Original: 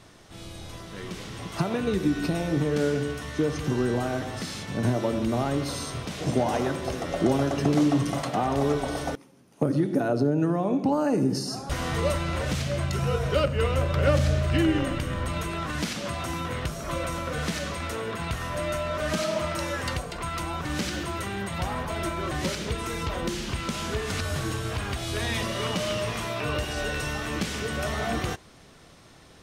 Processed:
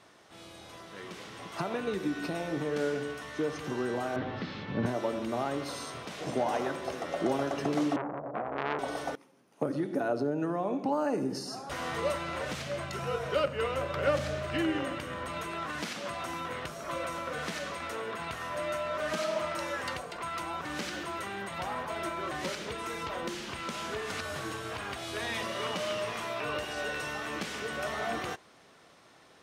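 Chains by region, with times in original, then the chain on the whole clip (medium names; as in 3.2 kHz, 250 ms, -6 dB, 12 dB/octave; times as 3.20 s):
4.16–4.86 s: low-pass 4.1 kHz 24 dB/octave + bass shelf 330 Hz +11.5 dB + band-stop 680 Hz, Q 8.2
7.96–8.79 s: steep low-pass 730 Hz 72 dB/octave + doubling 14 ms -4.5 dB + transformer saturation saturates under 1.5 kHz
whole clip: high-pass 640 Hz 6 dB/octave; treble shelf 2.6 kHz -8.5 dB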